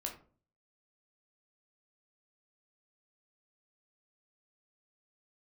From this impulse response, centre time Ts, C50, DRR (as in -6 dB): 18 ms, 9.5 dB, 1.0 dB